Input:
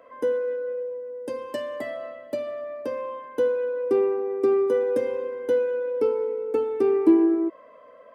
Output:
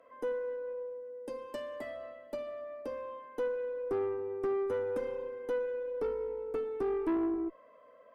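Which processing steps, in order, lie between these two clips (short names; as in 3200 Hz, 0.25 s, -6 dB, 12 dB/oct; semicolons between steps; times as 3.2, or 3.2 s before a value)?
tube stage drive 19 dB, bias 0.35; gain -8 dB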